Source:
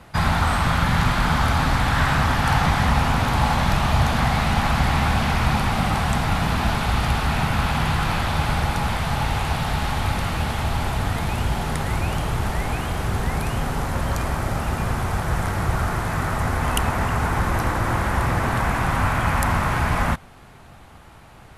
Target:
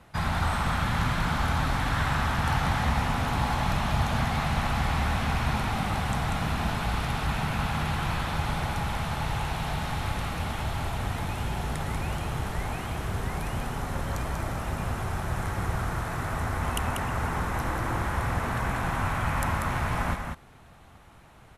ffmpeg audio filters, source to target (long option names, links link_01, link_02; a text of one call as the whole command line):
ffmpeg -i in.wav -af "bandreject=frequency=4700:width=19,aecho=1:1:190:0.531,volume=-8dB" out.wav